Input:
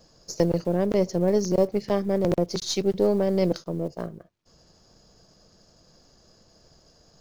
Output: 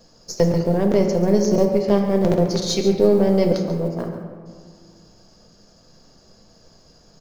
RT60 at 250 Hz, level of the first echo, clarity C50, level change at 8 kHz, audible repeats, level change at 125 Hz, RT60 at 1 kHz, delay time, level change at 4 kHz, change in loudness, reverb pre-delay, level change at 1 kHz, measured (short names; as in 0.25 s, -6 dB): 2.5 s, -12.0 dB, 4.5 dB, n/a, 1, +6.5 dB, 2.0 s, 0.139 s, +4.5 dB, +5.5 dB, 4 ms, +5.5 dB